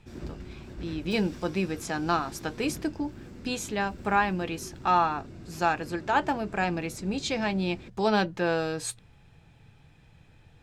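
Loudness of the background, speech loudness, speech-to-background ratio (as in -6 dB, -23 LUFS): -45.0 LUFS, -29.0 LUFS, 16.0 dB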